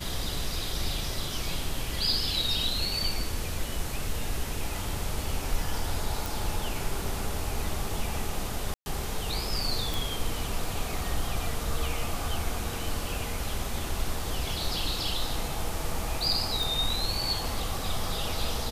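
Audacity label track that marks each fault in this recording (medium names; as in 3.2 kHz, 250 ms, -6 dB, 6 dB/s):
6.260000	6.260000	pop
8.740000	8.860000	dropout 120 ms
9.940000	9.940000	pop
16.630000	16.630000	pop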